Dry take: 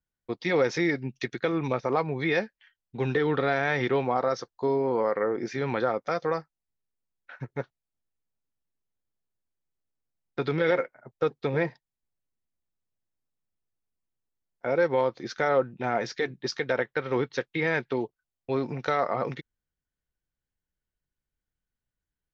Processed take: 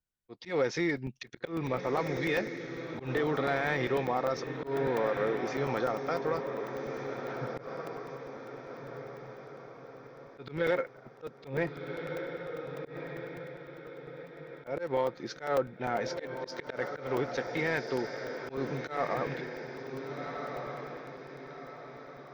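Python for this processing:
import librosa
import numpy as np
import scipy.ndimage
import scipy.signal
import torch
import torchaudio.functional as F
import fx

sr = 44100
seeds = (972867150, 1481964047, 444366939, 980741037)

p1 = fx.echo_diffused(x, sr, ms=1511, feedback_pct=43, wet_db=-7)
p2 = 10.0 ** (-26.5 / 20.0) * np.tanh(p1 / 10.0 ** (-26.5 / 20.0))
p3 = p1 + F.gain(torch.from_numpy(p2), -8.5).numpy()
p4 = fx.auto_swell(p3, sr, attack_ms=136.0)
p5 = fx.buffer_crackle(p4, sr, first_s=0.97, period_s=0.1, block=128, kind='zero')
y = F.gain(torch.from_numpy(p5), -6.0).numpy()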